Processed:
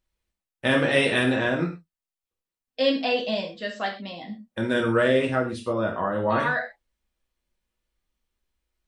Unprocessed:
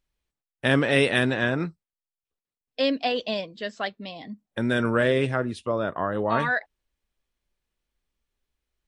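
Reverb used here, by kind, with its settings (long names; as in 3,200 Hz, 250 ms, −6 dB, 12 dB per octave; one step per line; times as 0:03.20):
reverb whose tail is shaped and stops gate 150 ms falling, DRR 0 dB
level −2 dB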